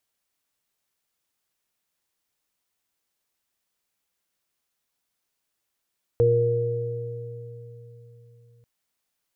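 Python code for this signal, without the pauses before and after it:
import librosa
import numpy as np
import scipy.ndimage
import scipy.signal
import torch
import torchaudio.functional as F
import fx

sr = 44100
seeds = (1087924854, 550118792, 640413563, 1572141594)

y = fx.additive(sr, length_s=2.44, hz=118.0, level_db=-21, upper_db=(-19, -12.0, 5.5), decay_s=4.44, upper_decays_s=(1.08, 2.37, 3.04))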